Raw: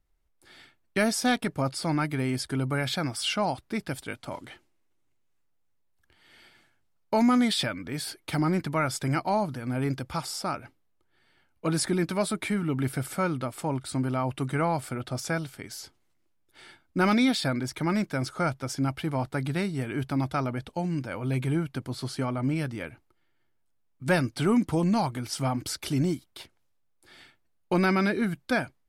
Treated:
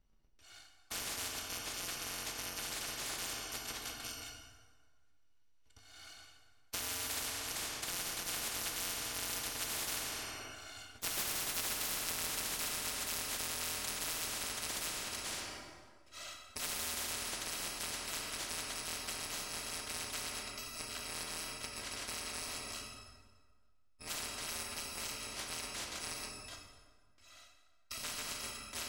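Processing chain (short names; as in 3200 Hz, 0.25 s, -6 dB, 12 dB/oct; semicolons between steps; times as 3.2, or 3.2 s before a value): FFT order left unsorted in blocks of 256 samples; Doppler pass-by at 11.46, 19 m/s, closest 18 m; LPF 5500 Hz 12 dB/oct; plate-style reverb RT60 1.6 s, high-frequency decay 0.65×, DRR 2 dB; spectral compressor 10:1; gain -3 dB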